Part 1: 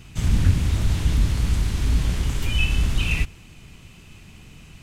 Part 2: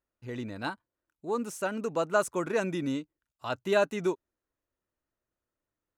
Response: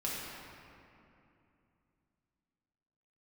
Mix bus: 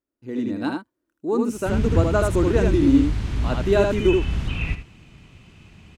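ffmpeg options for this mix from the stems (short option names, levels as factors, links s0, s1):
-filter_complex "[0:a]highpass=f=330:p=1,aemphasis=mode=reproduction:type=bsi,acrossover=split=3000[s0][s1];[s1]acompressor=threshold=0.00708:ratio=4:attack=1:release=60[s2];[s0][s2]amix=inputs=2:normalize=0,adelay=1500,volume=0.398,asplit=2[s3][s4];[s4]volume=0.299[s5];[1:a]equalizer=f=290:t=o:w=1.1:g=14,volume=0.501,asplit=2[s6][s7];[s7]volume=0.668[s8];[s5][s8]amix=inputs=2:normalize=0,aecho=0:1:78:1[s9];[s3][s6][s9]amix=inputs=3:normalize=0,dynaudnorm=f=120:g=5:m=2.24"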